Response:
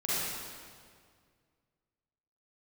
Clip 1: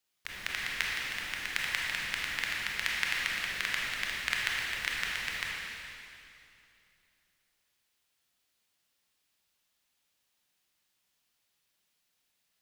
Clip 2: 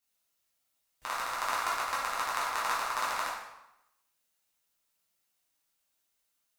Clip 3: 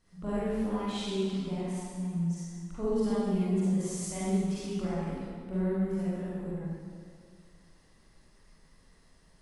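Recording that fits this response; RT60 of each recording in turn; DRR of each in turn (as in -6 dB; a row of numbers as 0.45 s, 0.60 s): 3; 2.7 s, 0.85 s, 2.0 s; -4.0 dB, -7.5 dB, -10.5 dB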